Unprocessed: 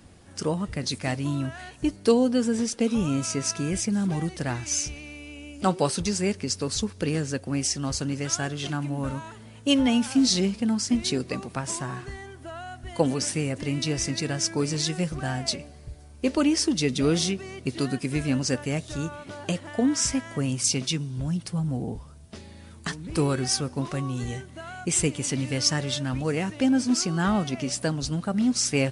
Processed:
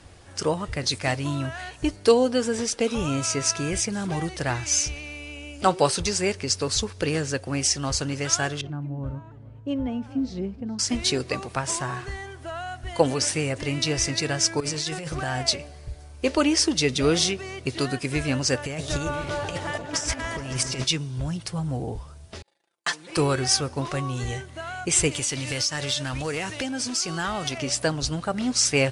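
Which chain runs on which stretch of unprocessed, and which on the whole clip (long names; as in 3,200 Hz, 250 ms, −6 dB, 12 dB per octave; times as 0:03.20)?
0:08.61–0:10.79: resonant band-pass 100 Hz, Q 0.54 + single-tap delay 420 ms −19.5 dB
0:14.60–0:15.43: low-shelf EQ 61 Hz −9 dB + compressor whose output falls as the input rises −31 dBFS
0:18.64–0:20.84: compressor whose output falls as the input rises −30 dBFS, ratio −0.5 + echo whose low-pass opens from repeat to repeat 141 ms, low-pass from 750 Hz, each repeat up 1 octave, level −6 dB
0:22.42–0:23.17: noise gate −42 dBFS, range −37 dB + high-pass filter 440 Hz + comb filter 5.8 ms, depth 78%
0:25.11–0:27.58: high-shelf EQ 2,300 Hz +8.5 dB + downward compressor, threshold −26 dBFS + hard clipping −22.5 dBFS
whole clip: Bessel low-pass filter 9,000 Hz; parametric band 210 Hz −11 dB 1.1 octaves; level +5.5 dB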